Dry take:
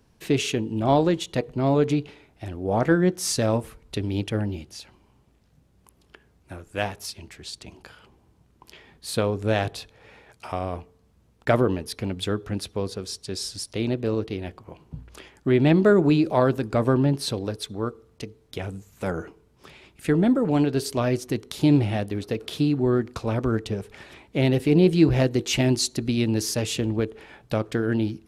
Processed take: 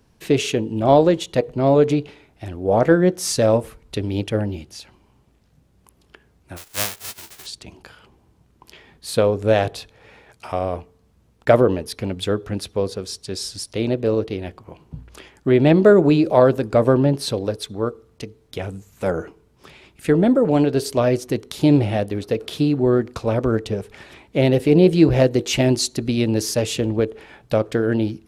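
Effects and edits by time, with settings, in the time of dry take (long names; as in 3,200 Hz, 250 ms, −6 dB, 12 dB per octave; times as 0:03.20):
0:06.56–0:07.45: spectral envelope flattened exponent 0.1
whole clip: dynamic equaliser 540 Hz, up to +7 dB, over −37 dBFS, Q 1.9; level +2.5 dB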